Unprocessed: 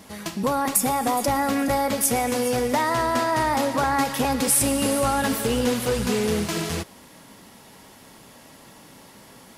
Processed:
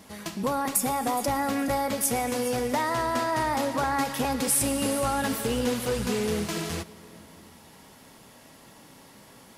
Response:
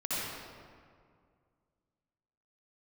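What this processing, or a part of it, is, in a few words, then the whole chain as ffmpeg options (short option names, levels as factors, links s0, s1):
compressed reverb return: -filter_complex "[0:a]asplit=2[s0][s1];[1:a]atrim=start_sample=2205[s2];[s1][s2]afir=irnorm=-1:irlink=0,acompressor=threshold=0.0794:ratio=6,volume=0.126[s3];[s0][s3]amix=inputs=2:normalize=0,volume=0.596"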